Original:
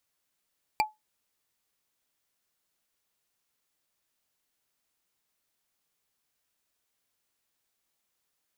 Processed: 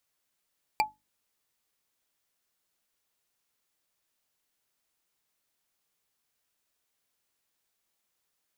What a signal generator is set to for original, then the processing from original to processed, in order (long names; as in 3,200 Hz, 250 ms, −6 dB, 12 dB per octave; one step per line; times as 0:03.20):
struck wood, lowest mode 858 Hz, decay 0.18 s, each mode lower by 3 dB, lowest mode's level −18 dB
mains-hum notches 50/100/150/200/250/300 Hz